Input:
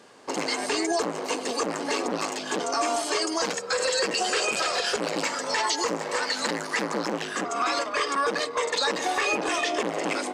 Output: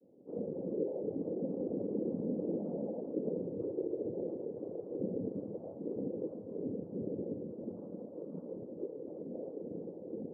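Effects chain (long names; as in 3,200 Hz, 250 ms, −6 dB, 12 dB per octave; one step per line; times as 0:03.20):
source passing by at 0:02.55, 23 m/s, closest 14 metres
convolution reverb RT60 0.75 s, pre-delay 3 ms, DRR −10 dB
cochlear-implant simulation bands 8
downward compressor 6 to 1, threshold −29 dBFS, peak gain reduction 15.5 dB
elliptic low-pass filter 520 Hz, stop band 80 dB
level −1 dB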